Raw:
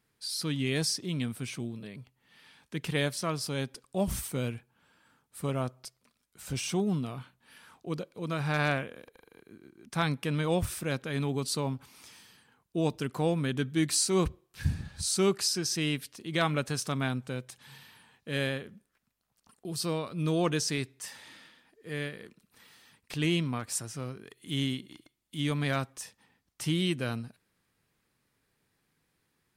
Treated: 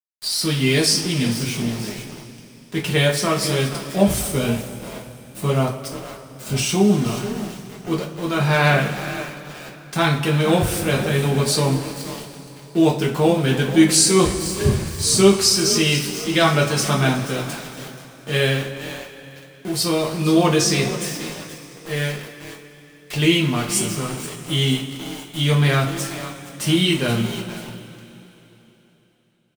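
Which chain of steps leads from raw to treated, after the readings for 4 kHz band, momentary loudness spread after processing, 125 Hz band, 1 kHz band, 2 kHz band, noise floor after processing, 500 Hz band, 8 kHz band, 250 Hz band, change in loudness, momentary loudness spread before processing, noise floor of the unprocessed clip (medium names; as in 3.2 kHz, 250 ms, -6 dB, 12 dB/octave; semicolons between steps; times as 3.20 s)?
+13.5 dB, 18 LU, +12.0 dB, +12.5 dB, +12.5 dB, -49 dBFS, +12.5 dB, +13.0 dB, +12.5 dB, +12.0 dB, 16 LU, -77 dBFS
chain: frequency-shifting echo 477 ms, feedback 42%, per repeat +38 Hz, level -13.5 dB; small samples zeroed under -41 dBFS; two-slope reverb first 0.3 s, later 3.5 s, from -18 dB, DRR -2.5 dB; trim +8 dB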